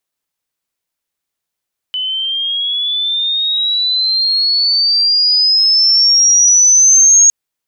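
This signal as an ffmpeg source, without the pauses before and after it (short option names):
-f lavfi -i "aevalsrc='pow(10,(-16+12*t/5.36)/20)*sin(2*PI*3000*5.36/log(6600/3000)*(exp(log(6600/3000)*t/5.36)-1))':d=5.36:s=44100"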